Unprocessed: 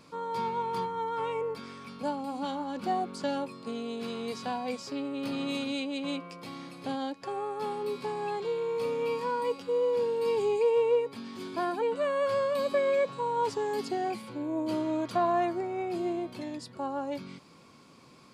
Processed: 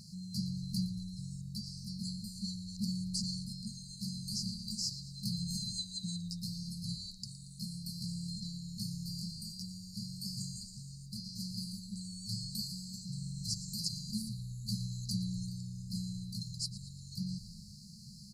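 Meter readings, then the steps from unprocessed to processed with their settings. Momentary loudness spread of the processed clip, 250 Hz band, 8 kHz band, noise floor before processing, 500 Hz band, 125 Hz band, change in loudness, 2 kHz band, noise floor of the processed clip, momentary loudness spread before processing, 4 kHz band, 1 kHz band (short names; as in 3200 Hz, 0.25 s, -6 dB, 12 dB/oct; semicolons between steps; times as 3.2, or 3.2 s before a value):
8 LU, -5.0 dB, n/a, -55 dBFS, under -40 dB, +9.0 dB, -8.5 dB, under -40 dB, -51 dBFS, 10 LU, +4.0 dB, under -40 dB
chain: FFT band-reject 220–4000 Hz; frequency-shifting echo 0.115 s, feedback 55%, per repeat -77 Hz, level -15 dB; gain +9 dB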